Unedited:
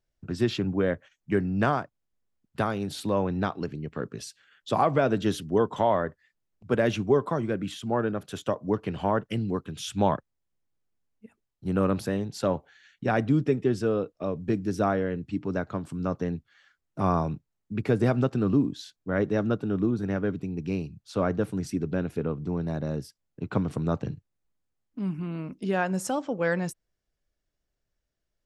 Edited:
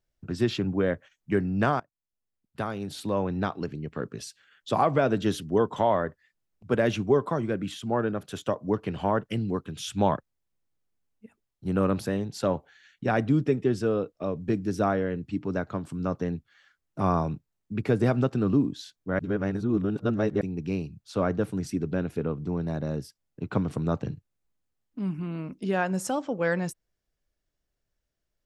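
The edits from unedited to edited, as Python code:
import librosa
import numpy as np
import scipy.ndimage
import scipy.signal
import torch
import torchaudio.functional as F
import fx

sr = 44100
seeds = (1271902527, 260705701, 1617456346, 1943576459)

y = fx.edit(x, sr, fx.fade_in_from(start_s=1.8, length_s=2.18, curve='qsin', floor_db=-21.5),
    fx.reverse_span(start_s=19.19, length_s=1.22), tone=tone)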